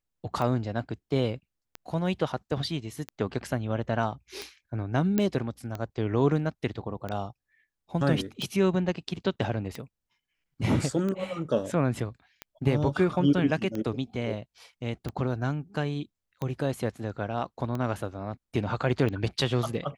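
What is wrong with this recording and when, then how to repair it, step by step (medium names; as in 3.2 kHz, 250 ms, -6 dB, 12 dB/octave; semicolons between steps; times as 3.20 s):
tick 45 rpm -20 dBFS
5.18 s: pop -12 dBFS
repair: de-click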